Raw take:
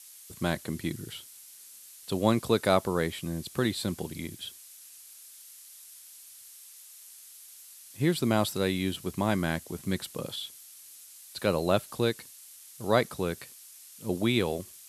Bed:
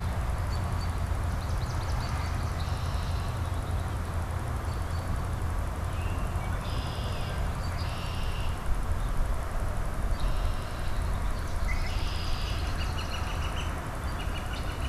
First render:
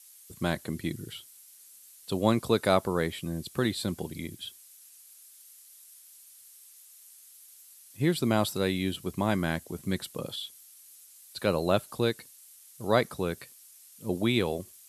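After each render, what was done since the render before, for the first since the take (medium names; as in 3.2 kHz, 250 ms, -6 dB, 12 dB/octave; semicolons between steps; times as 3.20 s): noise reduction 6 dB, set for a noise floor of -51 dBFS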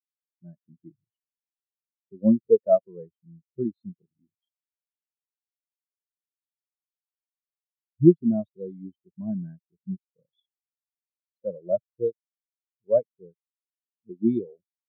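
level rider gain up to 7 dB; spectral contrast expander 4:1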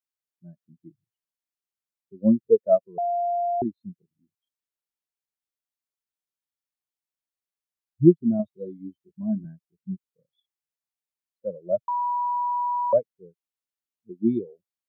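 2.98–3.62 s: bleep 697 Hz -22 dBFS; 8.38–9.45 s: doubling 14 ms -3 dB; 11.88–12.93 s: bleep 974 Hz -22.5 dBFS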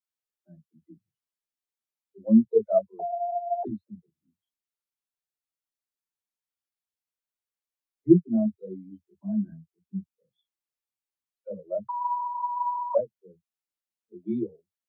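phase dispersion lows, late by 76 ms, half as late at 330 Hz; three-phase chorus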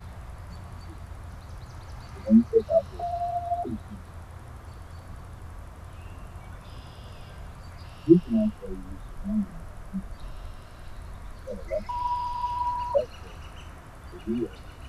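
add bed -11 dB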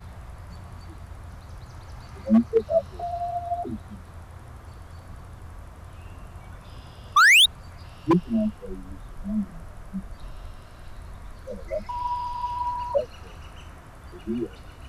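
7.16–7.46 s: painted sound rise 1.1–3.9 kHz -12 dBFS; wavefolder -11 dBFS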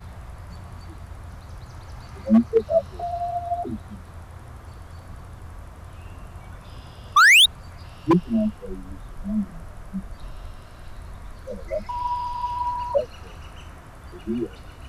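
trim +2 dB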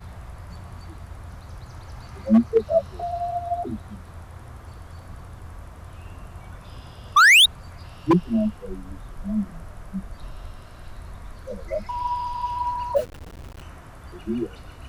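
12.96–13.62 s: send-on-delta sampling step -35.5 dBFS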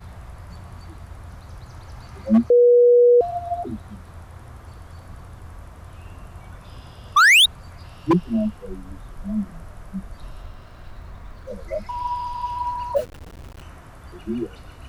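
2.50–3.21 s: bleep 484 Hz -9.5 dBFS; 10.42–11.53 s: median filter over 5 samples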